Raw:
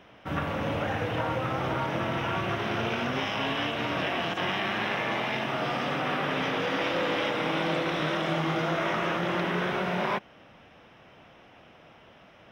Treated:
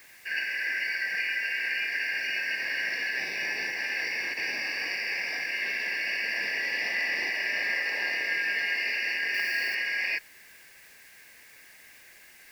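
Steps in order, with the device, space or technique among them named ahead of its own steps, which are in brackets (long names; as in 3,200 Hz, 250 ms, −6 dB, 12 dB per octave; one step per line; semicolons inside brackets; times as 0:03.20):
split-band scrambled radio (band-splitting scrambler in four parts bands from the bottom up 3142; band-pass filter 380–3,400 Hz; white noise bed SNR 25 dB)
0:09.34–0:09.75: high-shelf EQ 8,500 Hz +11.5 dB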